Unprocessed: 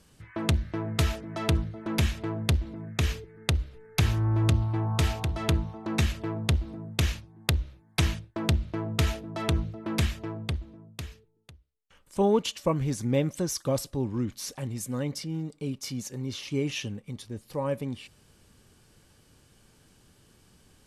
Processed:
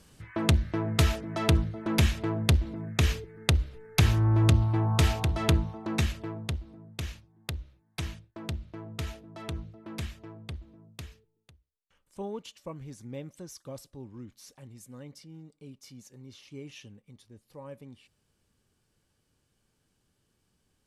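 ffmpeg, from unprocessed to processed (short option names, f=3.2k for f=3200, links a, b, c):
-af "volume=8dB,afade=t=out:st=5.45:d=1.18:silence=0.251189,afade=t=in:st=10.43:d=0.48:silence=0.501187,afade=t=out:st=10.91:d=1.4:silence=0.298538"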